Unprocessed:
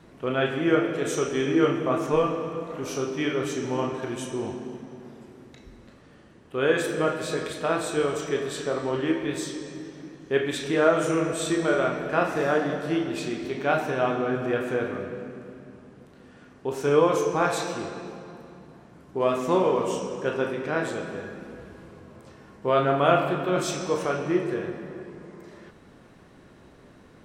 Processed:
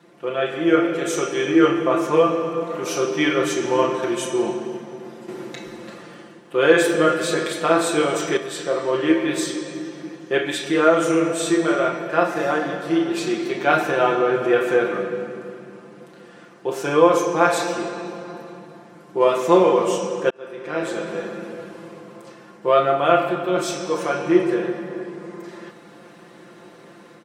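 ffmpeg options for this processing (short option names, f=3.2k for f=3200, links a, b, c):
-filter_complex "[0:a]asettb=1/sr,asplit=3[a][b][c];[a]atrim=end=5.284[d];[b]atrim=start=5.28:end=8.37,asetpts=PTS-STARTPTS,afade=t=in:d=0.004:c=qsin,afade=t=out:st=3.086:d=0.004:c=qsin,acontrast=86[e];[c]atrim=start=8.366[f];[d][e]acrossfade=d=0.004:c1=hsin:c2=qsin[g];[g][f]acrossfade=d=0.004:c1=qsin:c2=hsin,asplit=2[h][i];[h]atrim=end=20.3,asetpts=PTS-STARTPTS,afade=t=out:st=20.296:d=0.004:c=hsin[j];[i]atrim=start=20.3,asetpts=PTS-STARTPTS,afade=t=in:d=0.95[k];[j][k]concat=n=2:v=0:a=1,highpass=230,aecho=1:1:5.8:0.82,dynaudnorm=f=460:g=3:m=8dB,volume=-1dB"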